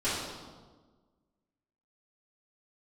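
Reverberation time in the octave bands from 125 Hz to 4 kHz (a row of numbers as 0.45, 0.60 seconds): 1.6, 1.7, 1.5, 1.3, 1.0, 1.0 seconds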